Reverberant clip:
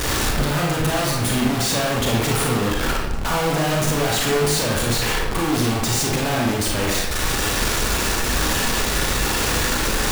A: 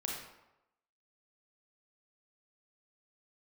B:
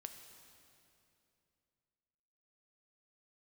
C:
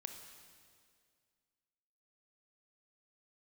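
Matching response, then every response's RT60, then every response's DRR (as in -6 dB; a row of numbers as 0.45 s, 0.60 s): A; 0.95 s, 2.7 s, 2.1 s; -2.5 dB, 5.5 dB, 5.0 dB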